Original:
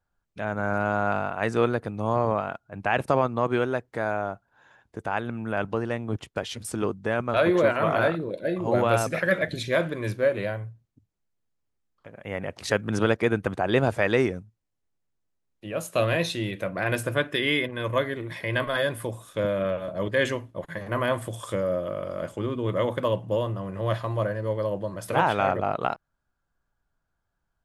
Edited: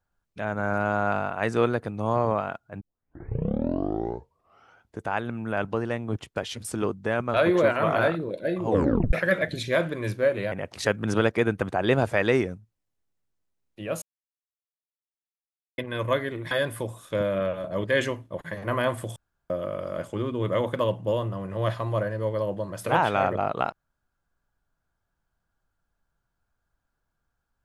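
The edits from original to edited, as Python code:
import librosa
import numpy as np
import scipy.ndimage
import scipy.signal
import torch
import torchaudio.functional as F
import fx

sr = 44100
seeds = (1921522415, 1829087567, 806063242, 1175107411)

y = fx.edit(x, sr, fx.tape_start(start_s=2.81, length_s=2.2),
    fx.tape_stop(start_s=8.68, length_s=0.45),
    fx.cut(start_s=10.52, length_s=1.85),
    fx.silence(start_s=15.87, length_s=1.76),
    fx.cut(start_s=18.36, length_s=0.39),
    fx.room_tone_fill(start_s=21.4, length_s=0.34), tone=tone)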